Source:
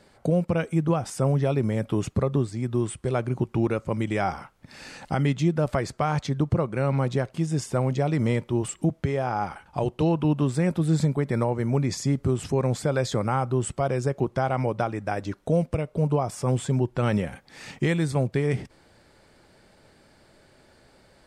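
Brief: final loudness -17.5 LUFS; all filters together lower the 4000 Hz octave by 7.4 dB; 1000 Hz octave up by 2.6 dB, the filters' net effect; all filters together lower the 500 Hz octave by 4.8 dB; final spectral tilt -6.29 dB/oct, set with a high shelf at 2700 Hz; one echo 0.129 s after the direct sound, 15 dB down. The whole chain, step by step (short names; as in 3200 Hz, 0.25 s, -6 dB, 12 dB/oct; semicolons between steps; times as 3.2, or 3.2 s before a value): bell 500 Hz -8 dB; bell 1000 Hz +8 dB; high shelf 2700 Hz -6.5 dB; bell 4000 Hz -4.5 dB; echo 0.129 s -15 dB; gain +9.5 dB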